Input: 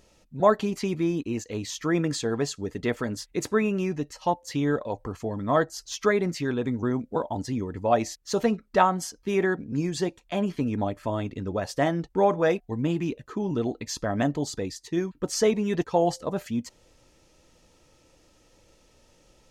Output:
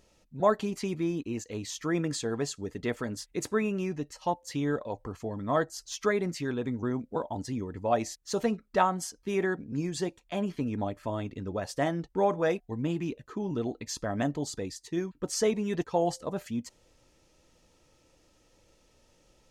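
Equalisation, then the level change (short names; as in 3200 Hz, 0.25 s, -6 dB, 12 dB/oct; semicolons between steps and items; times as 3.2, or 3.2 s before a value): dynamic EQ 8900 Hz, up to +4 dB, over -52 dBFS, Q 1.4; -4.5 dB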